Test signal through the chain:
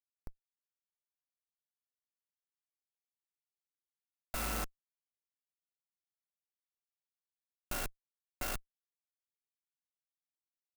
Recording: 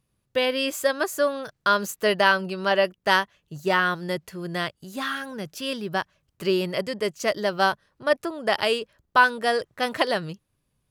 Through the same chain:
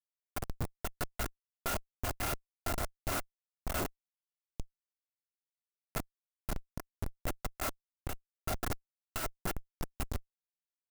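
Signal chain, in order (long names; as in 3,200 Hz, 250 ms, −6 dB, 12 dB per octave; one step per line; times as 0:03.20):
samples in bit-reversed order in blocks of 256 samples
transient designer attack +1 dB, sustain −5 dB
low-shelf EQ 380 Hz +8.5 dB
comparator with hysteresis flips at −15.5 dBFS
inverse Chebyshev low-pass filter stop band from 9,000 Hz, stop band 60 dB
converter with an unsteady clock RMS 0.086 ms
level −7 dB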